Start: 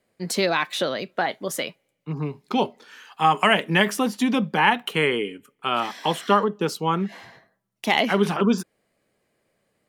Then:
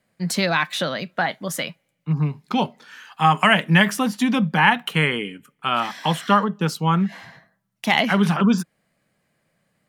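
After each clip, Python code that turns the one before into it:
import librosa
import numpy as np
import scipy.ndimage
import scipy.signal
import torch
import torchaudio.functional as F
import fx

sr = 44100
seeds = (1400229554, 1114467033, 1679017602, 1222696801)

y = fx.graphic_eq_15(x, sr, hz=(160, 400, 1600), db=(8, -8, 3))
y = F.gain(torch.from_numpy(y), 1.5).numpy()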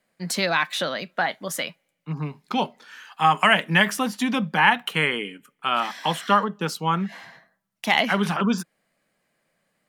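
y = fx.peak_eq(x, sr, hz=94.0, db=-13.0, octaves=1.7)
y = F.gain(torch.from_numpy(y), -1.0).numpy()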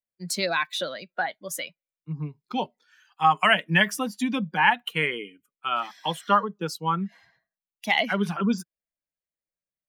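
y = fx.bin_expand(x, sr, power=1.5)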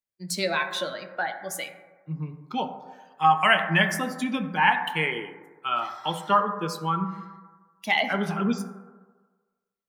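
y = fx.rev_fdn(x, sr, rt60_s=1.4, lf_ratio=0.8, hf_ratio=0.3, size_ms=52.0, drr_db=5.0)
y = F.gain(torch.from_numpy(y), -1.5).numpy()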